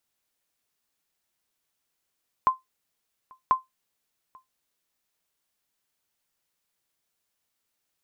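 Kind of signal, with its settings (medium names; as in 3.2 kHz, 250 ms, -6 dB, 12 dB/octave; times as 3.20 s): sonar ping 1.04 kHz, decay 0.16 s, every 1.04 s, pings 2, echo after 0.84 s, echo -29.5 dB -11.5 dBFS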